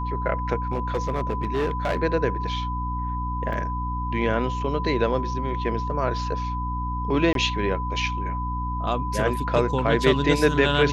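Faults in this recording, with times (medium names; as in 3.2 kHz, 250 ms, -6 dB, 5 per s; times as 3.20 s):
hum 60 Hz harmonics 5 -29 dBFS
whine 1 kHz -29 dBFS
0.71–2.02 s: clipped -19.5 dBFS
3.53 s: dropout 2.1 ms
7.33–7.35 s: dropout 22 ms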